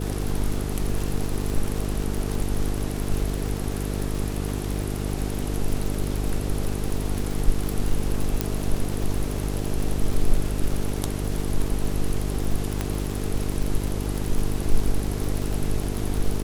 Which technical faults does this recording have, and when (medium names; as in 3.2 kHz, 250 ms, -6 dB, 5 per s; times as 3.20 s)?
buzz 50 Hz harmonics 9 -28 dBFS
crackle 97 per s -26 dBFS
8.41 s: pop -7 dBFS
12.81 s: pop -11 dBFS